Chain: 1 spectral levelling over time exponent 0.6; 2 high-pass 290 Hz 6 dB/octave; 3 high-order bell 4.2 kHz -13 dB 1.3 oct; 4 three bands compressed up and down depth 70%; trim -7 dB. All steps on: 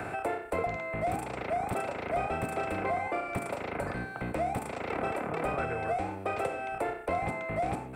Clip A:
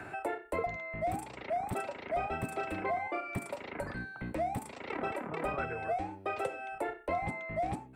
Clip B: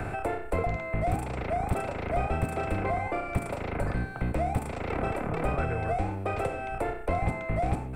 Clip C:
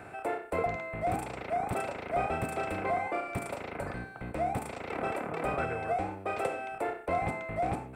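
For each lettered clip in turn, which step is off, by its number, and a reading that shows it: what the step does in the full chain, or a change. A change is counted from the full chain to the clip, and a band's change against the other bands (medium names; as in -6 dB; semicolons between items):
1, momentary loudness spread change +2 LU; 2, 125 Hz band +8.5 dB; 4, momentary loudness spread change +2 LU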